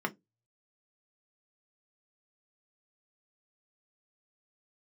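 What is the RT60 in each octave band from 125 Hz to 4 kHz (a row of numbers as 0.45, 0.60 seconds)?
0.35, 0.20, 0.20, 0.15, 0.10, 0.10 seconds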